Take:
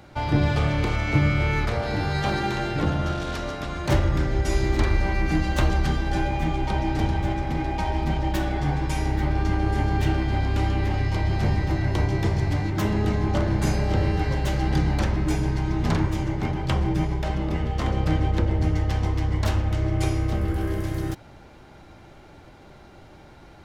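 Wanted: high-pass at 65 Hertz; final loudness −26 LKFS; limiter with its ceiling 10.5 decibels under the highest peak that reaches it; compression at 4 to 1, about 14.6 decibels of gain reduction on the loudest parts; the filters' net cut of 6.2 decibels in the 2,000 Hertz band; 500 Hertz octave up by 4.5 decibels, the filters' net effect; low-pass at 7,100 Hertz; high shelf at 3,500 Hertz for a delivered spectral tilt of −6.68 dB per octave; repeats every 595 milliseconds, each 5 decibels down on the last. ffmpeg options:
ffmpeg -i in.wav -af "highpass=65,lowpass=7100,equalizer=frequency=500:width_type=o:gain=6.5,equalizer=frequency=2000:width_type=o:gain=-7,highshelf=frequency=3500:gain=-5,acompressor=threshold=-34dB:ratio=4,alimiter=level_in=7dB:limit=-24dB:level=0:latency=1,volume=-7dB,aecho=1:1:595|1190|1785|2380|2975|3570|4165:0.562|0.315|0.176|0.0988|0.0553|0.031|0.0173,volume=12.5dB" out.wav

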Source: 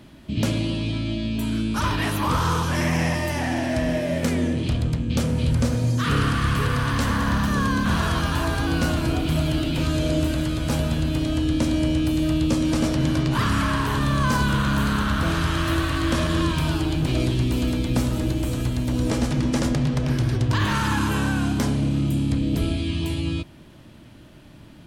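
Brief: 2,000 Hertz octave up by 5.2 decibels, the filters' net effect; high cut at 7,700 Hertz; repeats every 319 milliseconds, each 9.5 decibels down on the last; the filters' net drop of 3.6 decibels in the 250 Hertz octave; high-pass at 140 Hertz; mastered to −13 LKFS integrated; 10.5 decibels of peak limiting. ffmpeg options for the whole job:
ffmpeg -i in.wav -af "highpass=140,lowpass=7700,equalizer=frequency=250:width_type=o:gain=-4,equalizer=frequency=2000:width_type=o:gain=7,alimiter=limit=-20dB:level=0:latency=1,aecho=1:1:319|638|957|1276:0.335|0.111|0.0365|0.012,volume=15dB" out.wav

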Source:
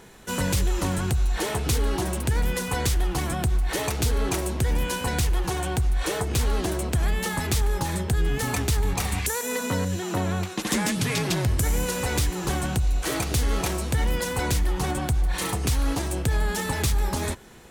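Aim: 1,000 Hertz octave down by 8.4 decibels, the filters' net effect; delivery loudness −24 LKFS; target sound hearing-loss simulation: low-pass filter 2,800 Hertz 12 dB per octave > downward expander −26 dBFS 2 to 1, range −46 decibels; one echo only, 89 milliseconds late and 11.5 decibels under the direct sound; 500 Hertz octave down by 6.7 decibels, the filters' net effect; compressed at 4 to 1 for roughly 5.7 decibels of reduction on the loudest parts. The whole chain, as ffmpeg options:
ffmpeg -i in.wav -af "equalizer=frequency=500:width_type=o:gain=-7,equalizer=frequency=1000:width_type=o:gain=-8.5,acompressor=threshold=-26dB:ratio=4,lowpass=2800,aecho=1:1:89:0.266,agate=range=-46dB:threshold=-26dB:ratio=2,volume=8dB" out.wav

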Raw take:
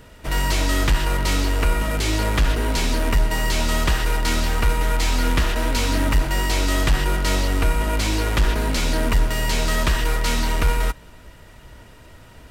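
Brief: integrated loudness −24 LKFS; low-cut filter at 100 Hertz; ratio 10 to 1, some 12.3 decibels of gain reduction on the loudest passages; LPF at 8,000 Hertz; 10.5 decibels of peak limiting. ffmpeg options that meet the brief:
ffmpeg -i in.wav -af "highpass=100,lowpass=8000,acompressor=threshold=-31dB:ratio=10,volume=15dB,alimiter=limit=-15.5dB:level=0:latency=1" out.wav

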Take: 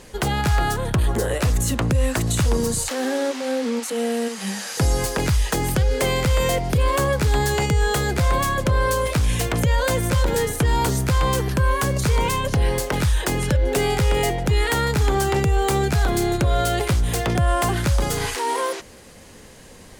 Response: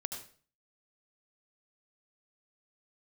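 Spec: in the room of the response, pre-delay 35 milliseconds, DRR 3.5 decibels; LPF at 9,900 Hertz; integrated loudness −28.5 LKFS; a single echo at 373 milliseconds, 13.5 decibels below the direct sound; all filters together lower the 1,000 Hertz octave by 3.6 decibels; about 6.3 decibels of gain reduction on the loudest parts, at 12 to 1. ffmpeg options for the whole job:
-filter_complex "[0:a]lowpass=9900,equalizer=frequency=1000:width_type=o:gain=-4.5,acompressor=threshold=-21dB:ratio=12,aecho=1:1:373:0.211,asplit=2[link_01][link_02];[1:a]atrim=start_sample=2205,adelay=35[link_03];[link_02][link_03]afir=irnorm=-1:irlink=0,volume=-3.5dB[link_04];[link_01][link_04]amix=inputs=2:normalize=0,volume=-4.5dB"

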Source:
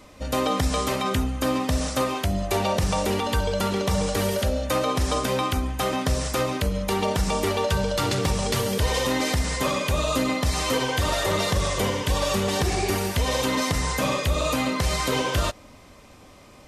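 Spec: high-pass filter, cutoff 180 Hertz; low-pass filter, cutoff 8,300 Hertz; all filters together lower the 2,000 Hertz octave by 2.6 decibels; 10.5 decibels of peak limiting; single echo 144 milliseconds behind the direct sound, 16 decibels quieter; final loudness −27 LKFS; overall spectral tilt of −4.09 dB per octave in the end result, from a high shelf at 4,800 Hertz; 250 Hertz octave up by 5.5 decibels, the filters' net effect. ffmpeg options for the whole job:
ffmpeg -i in.wav -af "highpass=180,lowpass=8300,equalizer=frequency=250:width_type=o:gain=8,equalizer=frequency=2000:width_type=o:gain=-4,highshelf=frequency=4800:gain=4,alimiter=limit=-19.5dB:level=0:latency=1,aecho=1:1:144:0.158,volume=1dB" out.wav

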